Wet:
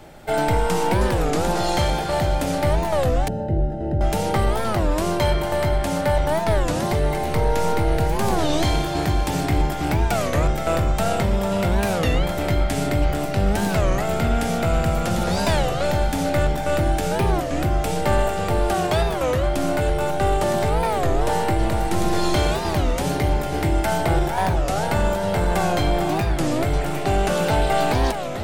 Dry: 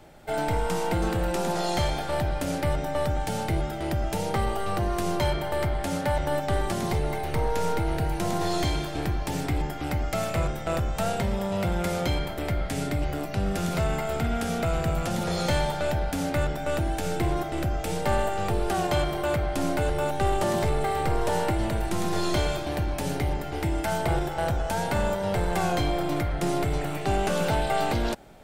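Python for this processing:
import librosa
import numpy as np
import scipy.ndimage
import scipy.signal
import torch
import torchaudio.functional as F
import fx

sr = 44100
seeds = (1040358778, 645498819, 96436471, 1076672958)

y = fx.echo_feedback(x, sr, ms=449, feedback_pct=48, wet_db=-9.0)
y = fx.rider(y, sr, range_db=4, speed_s=2.0)
y = fx.moving_average(y, sr, points=39, at=(3.28, 4.01))
y = fx.record_warp(y, sr, rpm=33.33, depth_cents=250.0)
y = y * librosa.db_to_amplitude(4.5)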